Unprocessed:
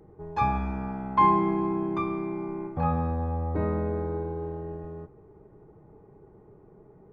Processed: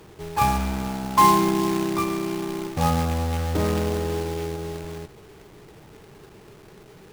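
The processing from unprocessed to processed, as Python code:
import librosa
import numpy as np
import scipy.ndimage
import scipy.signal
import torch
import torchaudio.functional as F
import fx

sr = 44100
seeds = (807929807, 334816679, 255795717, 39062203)

y = fx.quant_companded(x, sr, bits=4)
y = y * 10.0 ** (4.0 / 20.0)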